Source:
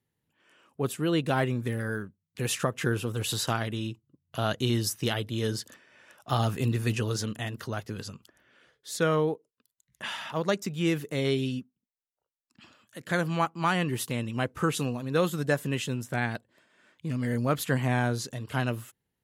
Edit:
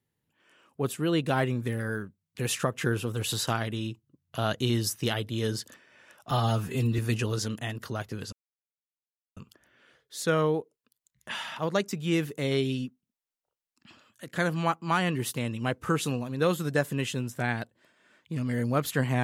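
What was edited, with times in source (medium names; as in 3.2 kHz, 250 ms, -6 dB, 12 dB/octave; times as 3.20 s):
6.31–6.76 s: stretch 1.5×
8.10 s: insert silence 1.04 s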